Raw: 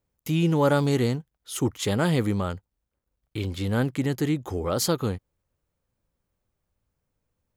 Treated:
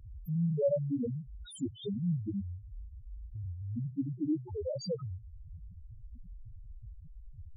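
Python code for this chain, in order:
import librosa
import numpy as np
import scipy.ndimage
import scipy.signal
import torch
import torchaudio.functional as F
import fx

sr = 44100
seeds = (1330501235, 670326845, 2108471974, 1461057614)

y = x + 0.5 * 10.0 ** (-30.0 / 20.0) * np.sign(x)
y = fx.spec_topn(y, sr, count=1)
y = fx.dynamic_eq(y, sr, hz=110.0, q=1.2, threshold_db=-44.0, ratio=4.0, max_db=-7)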